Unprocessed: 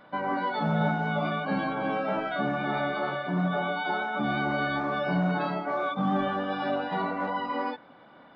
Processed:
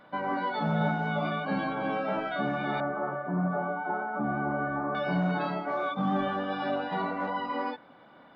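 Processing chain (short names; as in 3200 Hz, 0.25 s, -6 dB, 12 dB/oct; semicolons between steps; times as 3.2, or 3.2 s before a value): 2.8–4.95 LPF 1500 Hz 24 dB/oct; gain -1.5 dB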